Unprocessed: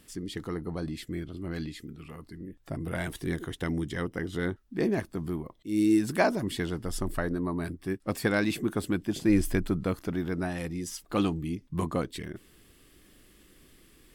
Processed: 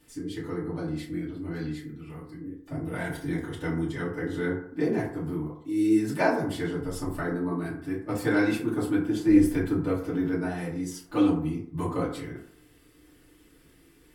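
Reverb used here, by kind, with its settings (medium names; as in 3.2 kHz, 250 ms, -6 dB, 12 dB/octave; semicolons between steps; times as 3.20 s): FDN reverb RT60 0.63 s, low-frequency decay 0.8×, high-frequency decay 0.4×, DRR -9.5 dB; trim -9.5 dB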